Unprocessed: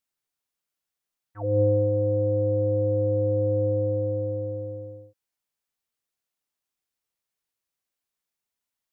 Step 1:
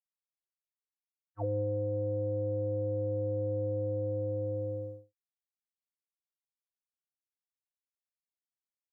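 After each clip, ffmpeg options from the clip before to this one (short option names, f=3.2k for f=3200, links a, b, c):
-af "acompressor=threshold=-30dB:ratio=6,agate=range=-33dB:threshold=-35dB:ratio=3:detection=peak"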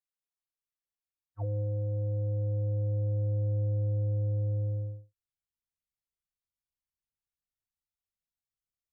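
-af "asubboost=boost=10.5:cutoff=120,volume=-5dB"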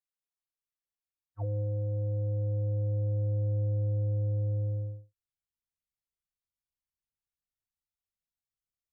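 -af anull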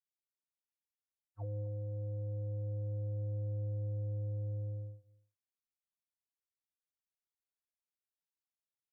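-af "aecho=1:1:255:0.0794,volume=-7.5dB" -ar 48000 -c:a libopus -b:a 64k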